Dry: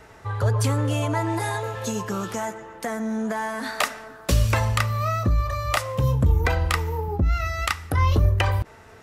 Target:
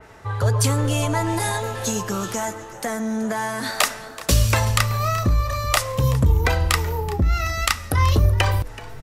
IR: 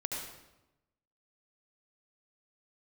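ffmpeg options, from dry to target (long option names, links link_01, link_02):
-filter_complex "[0:a]asplit=2[link_01][link_02];[link_02]asplit=3[link_03][link_04][link_05];[link_03]adelay=378,afreqshift=-97,volume=-17dB[link_06];[link_04]adelay=756,afreqshift=-194,volume=-26.4dB[link_07];[link_05]adelay=1134,afreqshift=-291,volume=-35.7dB[link_08];[link_06][link_07][link_08]amix=inputs=3:normalize=0[link_09];[link_01][link_09]amix=inputs=2:normalize=0,adynamicequalizer=threshold=0.00891:dfrequency=3200:dqfactor=0.7:tfrequency=3200:tqfactor=0.7:attack=5:release=100:ratio=0.375:range=3.5:mode=boostabove:tftype=highshelf,volume=2dB"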